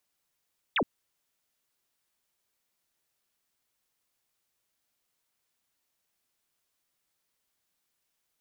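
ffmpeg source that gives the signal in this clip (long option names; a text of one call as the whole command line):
ffmpeg -f lavfi -i "aevalsrc='0.0708*clip(t/0.002,0,1)*clip((0.07-t)/0.002,0,1)*sin(2*PI*3900*0.07/log(180/3900)*(exp(log(180/3900)*t/0.07)-1))':duration=0.07:sample_rate=44100" out.wav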